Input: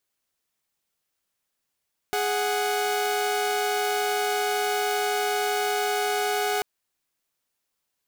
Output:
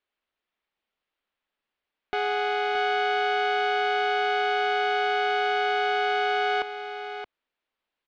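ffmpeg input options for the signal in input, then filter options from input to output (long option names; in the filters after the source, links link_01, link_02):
-f lavfi -i "aevalsrc='0.0668*((2*mod(415.3*t,1)-1)+(2*mod(739.99*t,1)-1))':duration=4.49:sample_rate=44100"
-filter_complex "[0:a]lowpass=frequency=3500:width=0.5412,lowpass=frequency=3500:width=1.3066,equalizer=frequency=120:width_type=o:width=1.1:gain=-11.5,asplit=2[link_01][link_02];[link_02]aecho=0:1:623:0.355[link_03];[link_01][link_03]amix=inputs=2:normalize=0"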